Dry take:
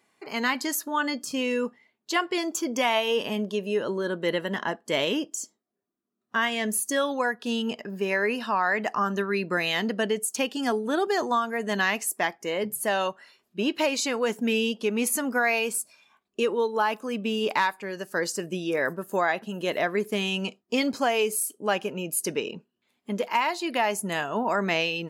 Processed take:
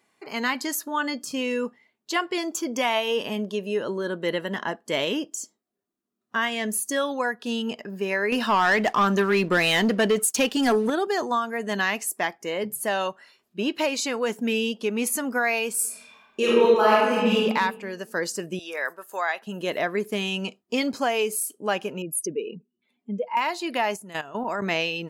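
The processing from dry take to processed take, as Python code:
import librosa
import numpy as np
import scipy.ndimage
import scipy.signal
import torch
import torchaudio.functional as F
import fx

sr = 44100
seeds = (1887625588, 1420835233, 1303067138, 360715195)

y = fx.leveller(x, sr, passes=2, at=(8.32, 10.9))
y = fx.reverb_throw(y, sr, start_s=15.74, length_s=1.59, rt60_s=1.2, drr_db=-7.5)
y = fx.highpass(y, sr, hz=740.0, slope=12, at=(18.59, 19.47))
y = fx.spec_expand(y, sr, power=1.9, at=(22.02, 23.37))
y = fx.level_steps(y, sr, step_db=14, at=(23.96, 24.62))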